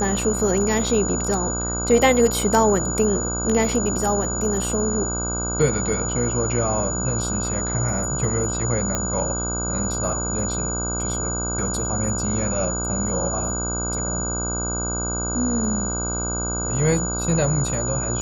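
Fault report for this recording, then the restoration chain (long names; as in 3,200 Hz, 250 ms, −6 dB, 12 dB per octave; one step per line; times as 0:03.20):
mains buzz 60 Hz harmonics 26 −28 dBFS
whistle 6,900 Hz −26 dBFS
0:08.95: click −9 dBFS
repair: click removal
hum removal 60 Hz, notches 26
notch filter 6,900 Hz, Q 30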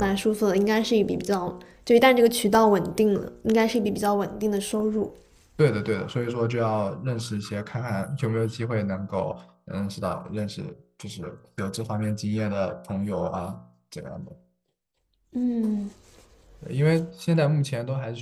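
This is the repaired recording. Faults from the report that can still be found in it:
none of them is left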